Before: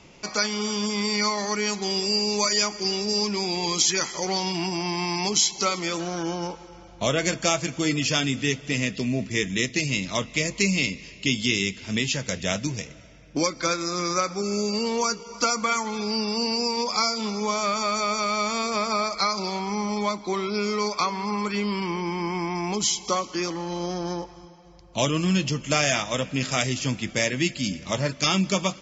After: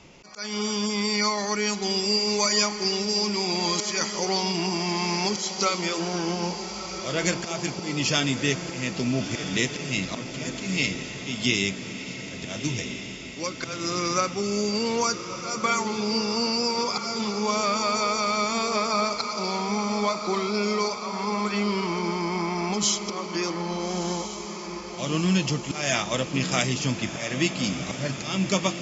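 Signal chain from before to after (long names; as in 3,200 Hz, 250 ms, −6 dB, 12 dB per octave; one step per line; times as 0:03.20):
0:11.73–0:12.17: output level in coarse steps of 23 dB
volume swells 225 ms
feedback delay with all-pass diffusion 1,315 ms, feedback 65%, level −9.5 dB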